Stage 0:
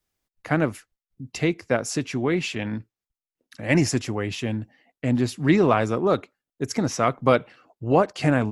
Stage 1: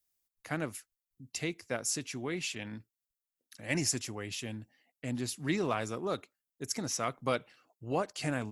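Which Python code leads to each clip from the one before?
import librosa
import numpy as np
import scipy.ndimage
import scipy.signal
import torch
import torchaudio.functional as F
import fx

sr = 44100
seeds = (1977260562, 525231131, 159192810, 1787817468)

y = scipy.signal.lfilter([1.0, -0.8], [1.0], x)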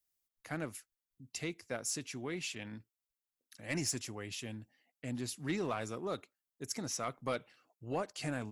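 y = 10.0 ** (-20.5 / 20.0) * np.tanh(x / 10.0 ** (-20.5 / 20.0))
y = F.gain(torch.from_numpy(y), -3.5).numpy()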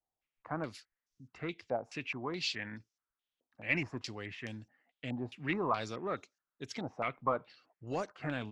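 y = fx.filter_held_lowpass(x, sr, hz=4.7, low_hz=790.0, high_hz=5900.0)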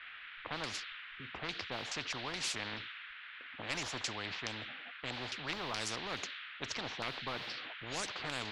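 y = fx.dmg_noise_band(x, sr, seeds[0], low_hz=1500.0, high_hz=3700.0, level_db=-59.0)
y = fx.env_lowpass(y, sr, base_hz=960.0, full_db=-32.0)
y = fx.spectral_comp(y, sr, ratio=4.0)
y = F.gain(torch.from_numpy(y), -4.5).numpy()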